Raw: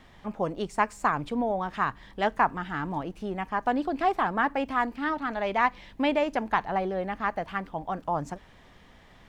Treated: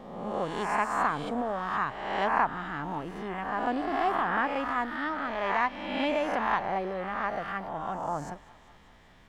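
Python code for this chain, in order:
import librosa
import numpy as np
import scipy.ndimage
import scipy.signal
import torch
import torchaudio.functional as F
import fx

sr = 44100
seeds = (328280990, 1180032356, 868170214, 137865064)

y = fx.spec_swells(x, sr, rise_s=1.12)
y = fx.echo_thinned(y, sr, ms=195, feedback_pct=73, hz=570.0, wet_db=-20)
y = F.gain(torch.from_numpy(y), -5.5).numpy()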